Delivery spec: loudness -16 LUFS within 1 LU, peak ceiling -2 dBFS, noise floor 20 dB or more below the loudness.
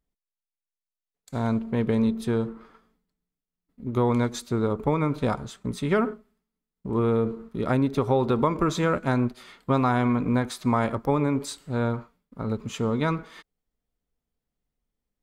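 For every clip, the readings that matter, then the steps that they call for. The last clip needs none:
loudness -26.0 LUFS; peak level -10.0 dBFS; loudness target -16.0 LUFS
-> trim +10 dB; peak limiter -2 dBFS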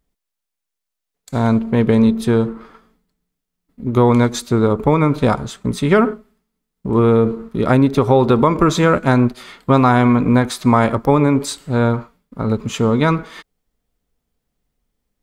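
loudness -16.0 LUFS; peak level -2.0 dBFS; noise floor -81 dBFS

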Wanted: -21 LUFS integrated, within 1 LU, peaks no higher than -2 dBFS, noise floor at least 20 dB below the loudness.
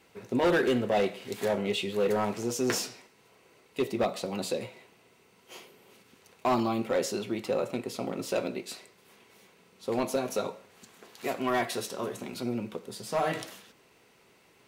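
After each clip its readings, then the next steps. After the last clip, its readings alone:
clipped samples 0.9%; clipping level -20.5 dBFS; loudness -30.5 LUFS; peak level -20.5 dBFS; loudness target -21.0 LUFS
-> clip repair -20.5 dBFS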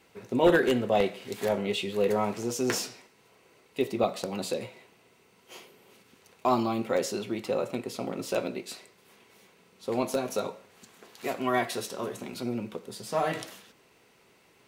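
clipped samples 0.0%; loudness -29.5 LUFS; peak level -11.5 dBFS; loudness target -21.0 LUFS
-> trim +8.5 dB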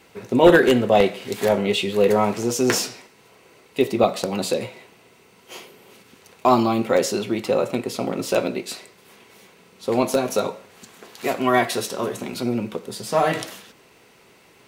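loudness -21.0 LUFS; peak level -3.0 dBFS; noise floor -54 dBFS

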